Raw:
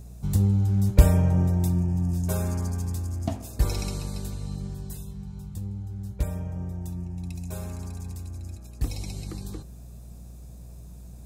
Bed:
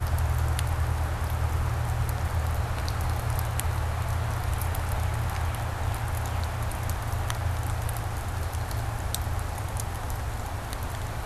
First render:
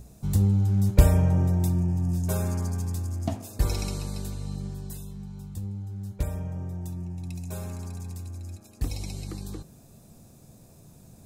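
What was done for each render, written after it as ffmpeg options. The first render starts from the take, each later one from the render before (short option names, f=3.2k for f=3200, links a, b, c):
-af "bandreject=f=60:t=h:w=4,bandreject=f=120:t=h:w=4,bandreject=f=180:t=h:w=4"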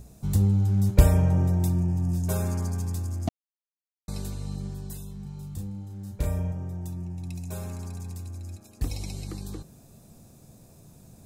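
-filter_complex "[0:a]asettb=1/sr,asplit=3[a][b][c];[a]atrim=end=5.224[d];[b]atrim=start=5.22:end=6.52,asetpts=PTS-STARTPTS,afade=t=in:d=0.004:c=qsin,afade=t=out:st=1.296:d=0.004:c=qsin,asplit=2[e][f];[f]adelay=34,volume=-3dB[g];[e][g]amix=inputs=2:normalize=0,atrim=end_sample=57330[h];[c]atrim=start=6.516[i];[d][h]acrossfade=d=0.004:c1=hsin:c2=qsin[j];[j][i]acrossfade=d=0.004:c1=qsin:c2=hsin,asplit=3[k][l][m];[k]atrim=end=3.29,asetpts=PTS-STARTPTS,afade=t=out:st=3.286:d=0.004:c=hsin[n];[l]atrim=start=3.29:end=4.08,asetpts=PTS-STARTPTS,volume=0[o];[m]atrim=start=4.08,asetpts=PTS-STARTPTS,afade=t=in:d=0.004:c=hsin[p];[n][o][p]concat=n=3:v=0:a=1"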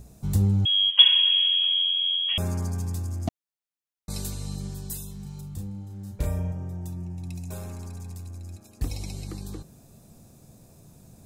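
-filter_complex "[0:a]asettb=1/sr,asplit=3[a][b][c];[a]atrim=end=0.654[d];[b]atrim=start=0.65:end=2.38,asetpts=PTS-STARTPTS,afade=t=in:d=0.004:c=qsin,afade=t=out:st=1.726:d=0.004:c=qsin,lowpass=f=2.9k:t=q:w=0.5098,lowpass=f=2.9k:t=q:w=0.6013,lowpass=f=2.9k:t=q:w=0.9,lowpass=f=2.9k:t=q:w=2.563,afreqshift=-3400[e];[c]atrim=start=2.376[f];[d][e]acrossfade=d=0.004:c1=hsin:c2=qsin[g];[g][f]acrossfade=d=0.004:c1=qsin:c2=hsin,asettb=1/sr,asplit=3[h][i][j];[h]atrim=end=4.104[k];[i]atrim=start=4.1:end=5.41,asetpts=PTS-STARTPTS,afade=t=in:d=0.004:c=qsin,afade=t=out:st=1.306:d=0.004:c=qsin,highshelf=f=2.9k:g=9.5[l];[j]atrim=start=5.406[m];[k][l]acrossfade=d=0.004:c1=hsin:c2=qsin[n];[n][m]acrossfade=d=0.004:c1=qsin:c2=hsin,asettb=1/sr,asplit=3[o][p][q];[o]atrim=end=7.514[r];[p]atrim=start=7.51:end=8.55,asetpts=PTS-STARTPTS,afade=t=in:d=0.004:c=qsin,afade=t=out:st=1.036:d=0.004:c=qsin,aeval=exprs='if(lt(val(0),0),0.708*val(0),val(0))':c=same[s];[q]atrim=start=8.546[t];[r][s]acrossfade=d=0.004:c1=hsin:c2=qsin[u];[u][t]acrossfade=d=0.004:c1=qsin:c2=hsin"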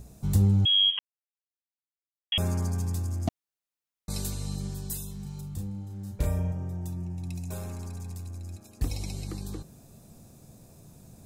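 -filter_complex "[0:a]asplit=3[a][b][c];[a]atrim=end=0.99,asetpts=PTS-STARTPTS,afade=t=out:st=0.986:d=0.004:c=hsin[d];[b]atrim=start=0.99:end=2.32,asetpts=PTS-STARTPTS,volume=0[e];[c]atrim=start=2.32,asetpts=PTS-STARTPTS,afade=t=in:d=0.004:c=hsin[f];[d][e][f]concat=n=3:v=0:a=1"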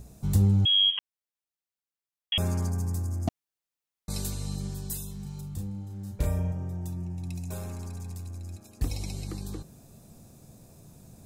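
-filter_complex "[0:a]asettb=1/sr,asplit=3[a][b][c];[a]atrim=end=2.694[d];[b]atrim=start=2.69:end=3.28,asetpts=PTS-STARTPTS,afade=t=in:d=0.004:c=qsin,afade=t=out:st=0.586:d=0.004:c=qsin,equalizer=f=3.2k:w=1.5:g=-11.5[e];[c]atrim=start=3.276[f];[d][e]acrossfade=d=0.004:c1=hsin:c2=qsin[g];[g][f]acrossfade=d=0.004:c1=qsin:c2=hsin"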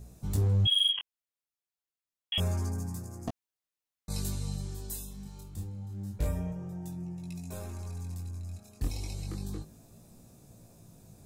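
-af "asoftclip=type=hard:threshold=-19dB,flanger=delay=16.5:depth=7.6:speed=0.29"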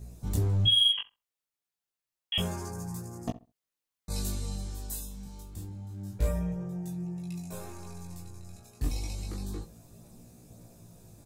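-filter_complex "[0:a]asplit=2[a][b];[b]adelay=17,volume=-3.5dB[c];[a][c]amix=inputs=2:normalize=0,asplit=2[d][e];[e]adelay=66,lowpass=f=1.4k:p=1,volume=-15dB,asplit=2[f][g];[g]adelay=66,lowpass=f=1.4k:p=1,volume=0.24,asplit=2[h][i];[i]adelay=66,lowpass=f=1.4k:p=1,volume=0.24[j];[d][f][h][j]amix=inputs=4:normalize=0"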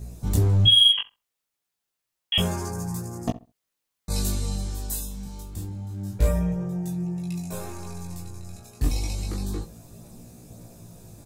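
-af "volume=7dB"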